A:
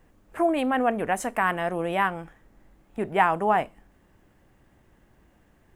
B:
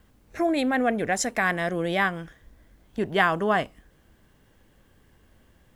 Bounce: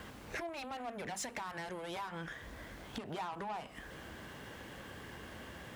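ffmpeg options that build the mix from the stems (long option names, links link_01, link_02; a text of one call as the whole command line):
ffmpeg -i stem1.wav -i stem2.wav -filter_complex "[0:a]bandreject=frequency=48.87:width_type=h:width=4,bandreject=frequency=97.74:width_type=h:width=4,bandreject=frequency=146.61:width_type=h:width=4,bandreject=frequency=195.48:width_type=h:width=4,bandreject=frequency=244.35:width_type=h:width=4,volume=-3.5dB,asplit=2[link_01][link_02];[1:a]asplit=2[link_03][link_04];[link_04]highpass=frequency=720:poles=1,volume=26dB,asoftclip=type=tanh:threshold=-6.5dB[link_05];[link_03][link_05]amix=inputs=2:normalize=0,lowpass=frequency=3800:poles=1,volume=-6dB,lowshelf=frequency=140:gain=11.5,acompressor=threshold=-21dB:ratio=6,volume=-1,volume=-2.5dB[link_06];[link_02]apad=whole_len=253707[link_07];[link_06][link_07]sidechaincompress=threshold=-29dB:ratio=8:attack=28:release=155[link_08];[link_01][link_08]amix=inputs=2:normalize=0,asoftclip=type=tanh:threshold=-24dB,highpass=58,acompressor=threshold=-44dB:ratio=2.5" out.wav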